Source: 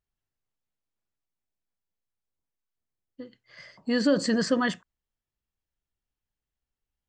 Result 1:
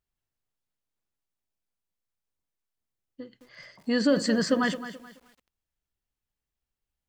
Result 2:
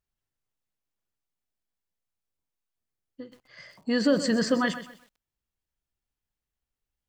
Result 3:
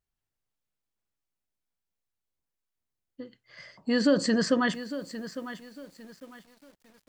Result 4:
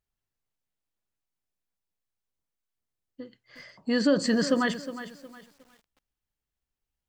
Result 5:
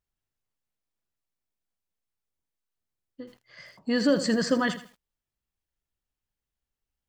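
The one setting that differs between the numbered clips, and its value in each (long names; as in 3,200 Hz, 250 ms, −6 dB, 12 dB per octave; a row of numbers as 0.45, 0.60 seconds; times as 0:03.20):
feedback echo at a low word length, delay time: 215, 127, 854, 362, 81 milliseconds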